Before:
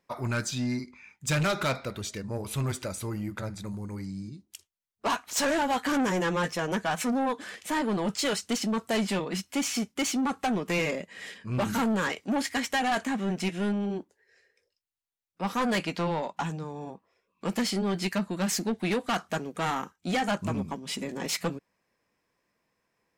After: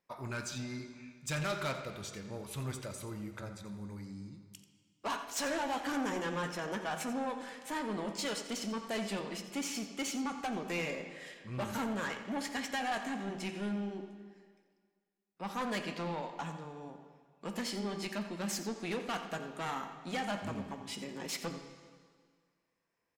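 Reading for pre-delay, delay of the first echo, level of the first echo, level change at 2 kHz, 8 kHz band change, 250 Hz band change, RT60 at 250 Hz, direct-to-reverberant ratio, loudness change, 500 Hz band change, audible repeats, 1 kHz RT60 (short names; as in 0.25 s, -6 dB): 6 ms, 87 ms, -13.0 dB, -7.5 dB, -8.0 dB, -9.0 dB, 1.8 s, 6.0 dB, -8.5 dB, -8.0 dB, 1, 1.9 s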